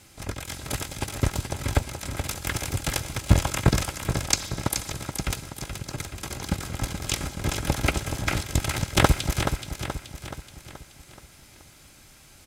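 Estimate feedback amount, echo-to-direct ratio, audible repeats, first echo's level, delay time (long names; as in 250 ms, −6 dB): 51%, −6.5 dB, 5, −8.0 dB, 427 ms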